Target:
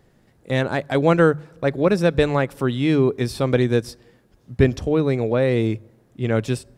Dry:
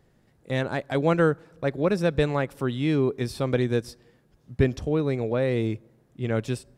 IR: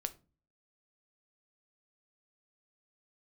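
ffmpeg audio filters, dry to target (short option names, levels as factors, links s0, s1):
-af "bandreject=f=50:t=h:w=6,bandreject=f=100:t=h:w=6,bandreject=f=150:t=h:w=6,volume=1.88"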